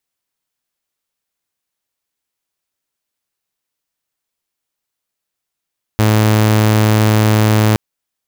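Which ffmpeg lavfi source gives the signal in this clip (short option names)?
-f lavfi -i "aevalsrc='0.473*(2*mod(108*t,1)-1)':d=1.77:s=44100"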